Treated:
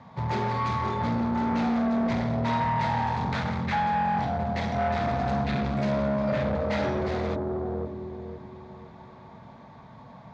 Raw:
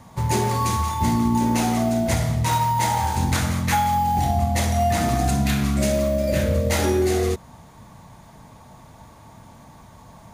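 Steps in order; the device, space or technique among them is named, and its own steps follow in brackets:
analogue delay pedal into a guitar amplifier (bucket-brigade delay 510 ms, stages 2,048, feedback 34%, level −3 dB; tube saturation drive 21 dB, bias 0.35; loudspeaker in its box 89–3,900 Hz, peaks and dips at 93 Hz −7 dB, 330 Hz −8 dB, 2,900 Hz −6 dB)

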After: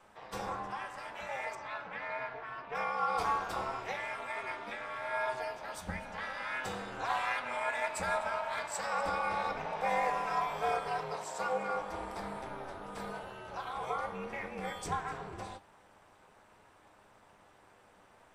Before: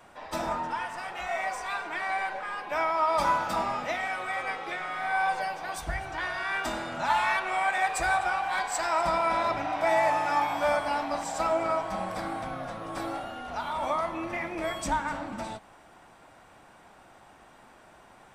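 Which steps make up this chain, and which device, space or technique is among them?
alien voice (ring modulation 130 Hz; flanger 0.18 Hz, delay 9.5 ms, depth 1.5 ms, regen +68%)
0:01.55–0:02.75: high-frequency loss of the air 160 metres
0:11.12–0:11.76: high-pass filter 200 Hz 6 dB per octave

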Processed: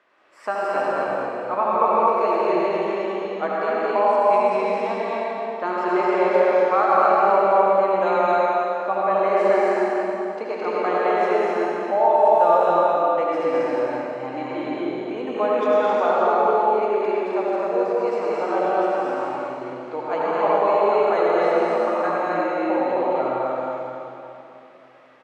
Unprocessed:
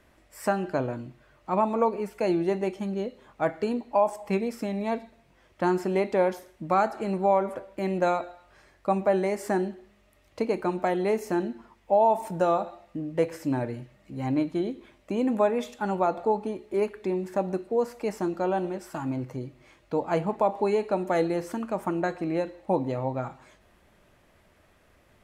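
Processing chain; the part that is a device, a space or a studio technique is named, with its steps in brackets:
station announcement (band-pass filter 500–3,600 Hz; parametric band 1,200 Hz +5.5 dB 0.38 octaves; loudspeakers that aren't time-aligned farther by 74 metres −3 dB, 90 metres −2 dB; convolution reverb RT60 3.0 s, pre-delay 69 ms, DRR −4.5 dB)

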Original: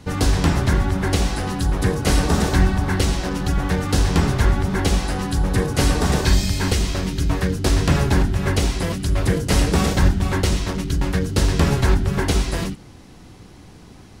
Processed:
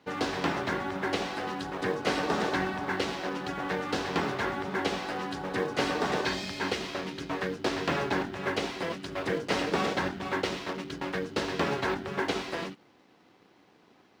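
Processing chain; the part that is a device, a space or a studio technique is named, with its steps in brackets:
phone line with mismatched companding (band-pass filter 330–3,600 Hz; mu-law and A-law mismatch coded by A)
level −3.5 dB

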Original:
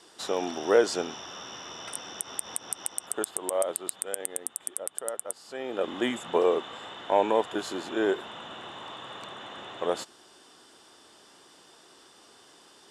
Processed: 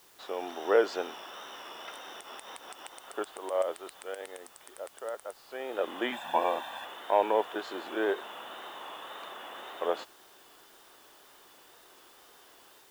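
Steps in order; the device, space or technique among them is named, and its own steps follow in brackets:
dictaphone (band-pass filter 390–3,200 Hz; automatic gain control gain up to 6 dB; tape wow and flutter; white noise bed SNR 26 dB)
0:06.12–0:06.85: comb filter 1.2 ms, depth 99%
level −6.5 dB

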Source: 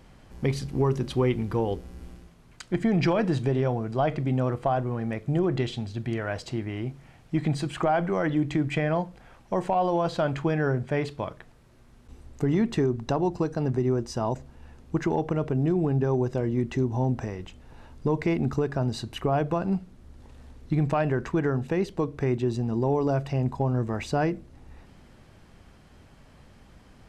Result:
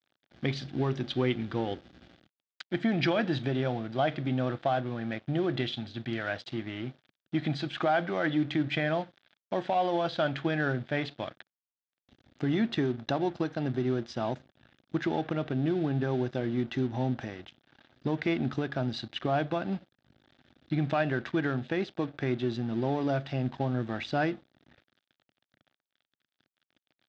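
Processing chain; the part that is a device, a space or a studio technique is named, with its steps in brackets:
blown loudspeaker (dead-zone distortion −45 dBFS; loudspeaker in its box 150–5,000 Hz, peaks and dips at 180 Hz −6 dB, 440 Hz −9 dB, 1,000 Hz −9 dB, 1,600 Hz +4 dB, 3,500 Hz +9 dB)

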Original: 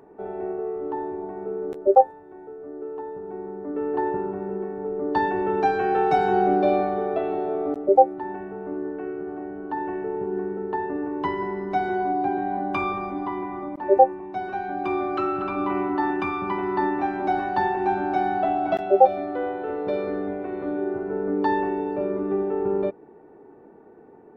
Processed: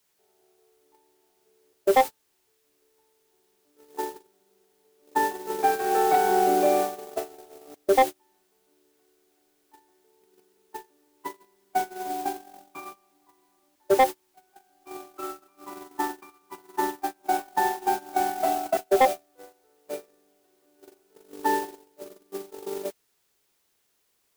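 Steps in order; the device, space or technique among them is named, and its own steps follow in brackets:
aircraft radio (band-pass filter 330–2,500 Hz; hard clipping −13 dBFS, distortion −12 dB; white noise bed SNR 10 dB; noise gate −23 dBFS, range −35 dB)

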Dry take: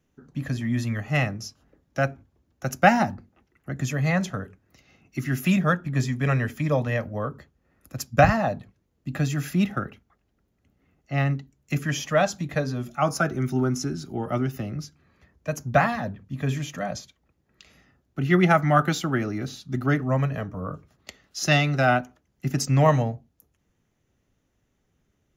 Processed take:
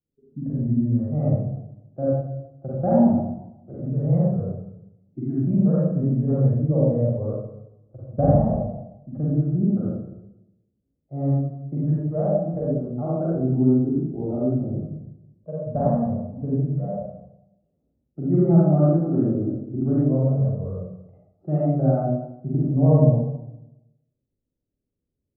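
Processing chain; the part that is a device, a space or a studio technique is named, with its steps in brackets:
noise reduction from a noise print of the clip's start 16 dB
next room (low-pass filter 580 Hz 24 dB per octave; convolution reverb RT60 0.85 s, pre-delay 38 ms, DRR −8 dB)
level −4 dB

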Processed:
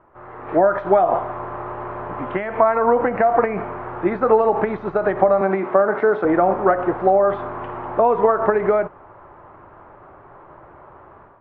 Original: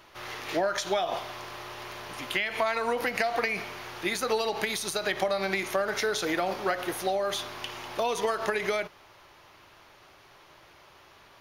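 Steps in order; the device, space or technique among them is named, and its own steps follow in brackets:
0:05.41–0:06.25: high-pass filter 170 Hz 24 dB per octave
action camera in a waterproof case (low-pass filter 1,300 Hz 24 dB per octave; automatic gain control gain up to 11 dB; level +2.5 dB; AAC 48 kbit/s 24,000 Hz)

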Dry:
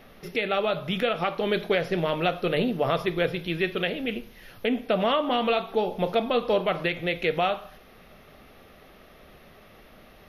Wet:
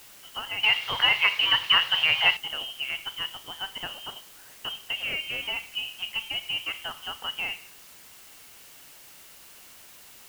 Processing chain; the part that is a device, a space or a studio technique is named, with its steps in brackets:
scrambled radio voice (band-pass filter 330–3,200 Hz; voice inversion scrambler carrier 3,400 Hz; white noise bed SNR 14 dB)
0:00.63–0:02.37: octave-band graphic EQ 125/250/500/1,000/2,000/4,000/8,000 Hz +11/−5/+7/+10/+10/+11/−3 dB
level −7 dB

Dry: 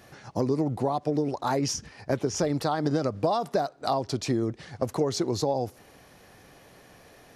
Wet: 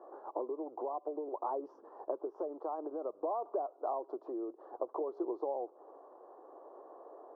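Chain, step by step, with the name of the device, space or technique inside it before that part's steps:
AM radio (band-pass filter 180–3,400 Hz; downward compressor 6 to 1, threshold −36 dBFS, peak gain reduction 14.5 dB; soft clipping −23 dBFS, distortion −28 dB; amplitude tremolo 0.57 Hz, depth 19%)
elliptic band-pass filter 340–1,100 Hz, stop band 40 dB
level +4.5 dB

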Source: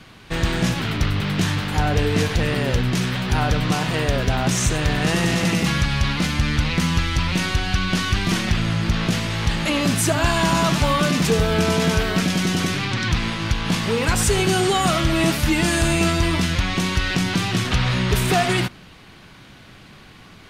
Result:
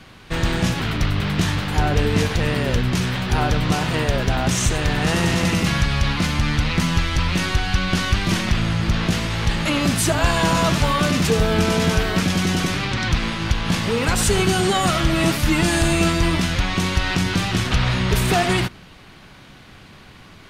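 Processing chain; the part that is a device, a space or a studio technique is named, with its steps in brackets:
octave pedal (pitch-shifted copies added −12 semitones −8 dB)

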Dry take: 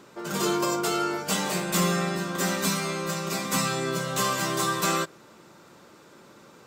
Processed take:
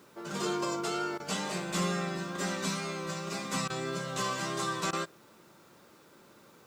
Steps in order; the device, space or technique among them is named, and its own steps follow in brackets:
worn cassette (low-pass filter 7,800 Hz 12 dB per octave; tape wow and flutter 27 cents; tape dropouts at 0:01.18/0:03.68/0:04.91, 18 ms −15 dB; white noise bed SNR 33 dB)
level −6.5 dB

